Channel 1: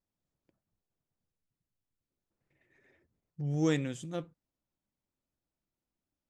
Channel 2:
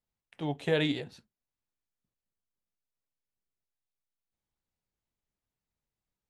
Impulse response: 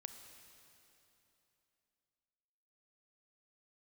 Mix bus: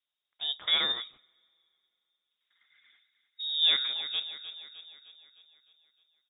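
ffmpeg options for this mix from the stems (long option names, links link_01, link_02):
-filter_complex "[0:a]volume=3dB,asplit=3[link_01][link_02][link_03];[link_02]volume=-11dB[link_04];[link_03]volume=-10.5dB[link_05];[1:a]agate=range=-27dB:threshold=-50dB:ratio=16:detection=peak,volume=0.5dB,asplit=2[link_06][link_07];[link_07]volume=-20.5dB[link_08];[2:a]atrim=start_sample=2205[link_09];[link_04][link_08]amix=inputs=2:normalize=0[link_10];[link_10][link_09]afir=irnorm=-1:irlink=0[link_11];[link_05]aecho=0:1:306|612|918|1224|1530|1836|2142|2448:1|0.53|0.281|0.149|0.0789|0.0418|0.0222|0.0117[link_12];[link_01][link_06][link_11][link_12]amix=inputs=4:normalize=0,highpass=190,acrusher=bits=9:mode=log:mix=0:aa=0.000001,lowpass=frequency=3300:width_type=q:width=0.5098,lowpass=frequency=3300:width_type=q:width=0.6013,lowpass=frequency=3300:width_type=q:width=0.9,lowpass=frequency=3300:width_type=q:width=2.563,afreqshift=-3900"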